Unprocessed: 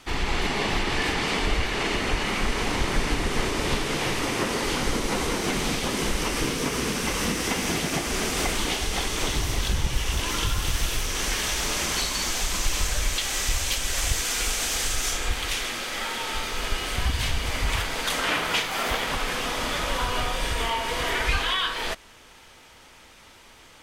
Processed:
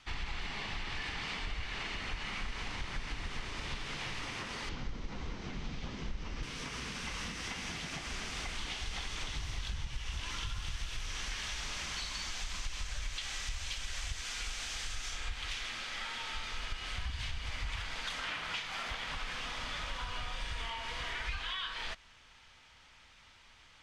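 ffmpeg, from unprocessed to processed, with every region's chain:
-filter_complex "[0:a]asettb=1/sr,asplit=3[s0][s1][s2];[s0]atrim=end=4.694[s3];[s1]atrim=start=4.69:end=6.43,asetpts=PTS-STARTPTS,afade=t=in:d=0.004:c=qsin,afade=t=out:st=1.736:d=0.004:c=qsin,lowpass=f=6700:w=0.5412,lowpass=f=6700:w=1.3066,tiltshelf=f=650:g=6[s4];[s2]atrim=start=6.426[s5];[s3][s4]acrossfade=d=0.004:c1=hsin:c2=qsin[s6];[s6][s5]acrossfade=d=0.004:c1=qsin:c2=hsin,acompressor=threshold=0.0501:ratio=6,lowpass=5200,equalizer=f=390:w=0.65:g=-12,volume=0.473"

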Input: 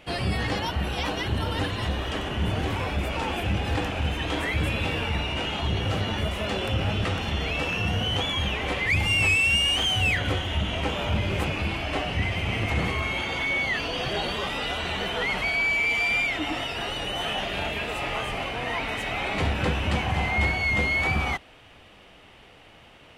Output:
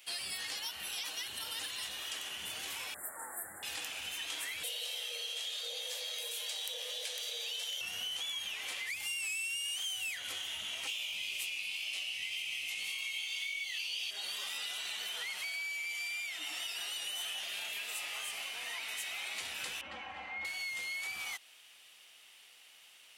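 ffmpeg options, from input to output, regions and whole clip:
-filter_complex "[0:a]asettb=1/sr,asplit=3[s0][s1][s2];[s0]atrim=end=2.944[s3];[s1]atrim=start=2.94:end=3.63,asetpts=PTS-STARTPTS,afade=t=in:d=0.004:c=qsin,afade=t=out:st=0.686:d=0.004:c=qsin,asuperstop=centerf=3900:order=20:qfactor=0.69,lowshelf=f=180:g=-6.5,asplit=2[s4][s5];[s5]adelay=22,volume=0.251[s6];[s4][s6]amix=inputs=2:normalize=0,atrim=end_sample=30429[s7];[s2]atrim=start=3.626[s8];[s3][s7]acrossfade=d=0.004:c1=hsin:c2=qsin[s9];[s9][s8]acrossfade=d=0.004:c1=qsin:c2=hsin,asettb=1/sr,asplit=3[s10][s11][s12];[s10]atrim=end=4.634[s13];[s11]atrim=start=4.63:end=7.81,asetpts=PTS-STARTPTS,afade=t=in:d=0.004:c=qsin,afade=t=out:st=3.176:d=0.004:c=qsin,equalizer=f=690:w=0.83:g=-13.5,afreqshift=400[s14];[s12]atrim=start=7.806[s15];[s13][s14]acrossfade=d=0.004:c1=hsin:c2=qsin[s16];[s16][s15]acrossfade=d=0.004:c1=qsin:c2=hsin,asettb=1/sr,asplit=3[s17][s18][s19];[s17]atrim=end=10.874[s20];[s18]atrim=start=10.87:end=14.11,asetpts=PTS-STARTPTS,afade=t=in:d=0.004:c=qsin,afade=t=out:st=3.236:d=0.004:c=qsin,highshelf=f=2000:t=q:w=3:g=7.5,flanger=delay=16.5:depth=3.9:speed=1.8[s21];[s19]atrim=start=14.106[s22];[s20][s21]acrossfade=d=0.004:c1=hsin:c2=qsin[s23];[s23][s22]acrossfade=d=0.004:c1=qsin:c2=hsin,asettb=1/sr,asplit=3[s24][s25][s26];[s24]atrim=end=19.814[s27];[s25]atrim=start=19.81:end=20.45,asetpts=PTS-STARTPTS,afade=t=in:d=0.004:c=qsin,afade=t=out:st=0.636:d=0.004:c=qsin,lowpass=1400,aecho=1:1:3.7:0.72,atrim=end_sample=28224[s28];[s26]atrim=start=20.446[s29];[s27][s28]acrossfade=d=0.004:c1=hsin:c2=qsin[s30];[s30][s29]acrossfade=d=0.004:c1=qsin:c2=hsin,aderivative,acompressor=threshold=0.01:ratio=6,highshelf=f=3100:g=7.5"

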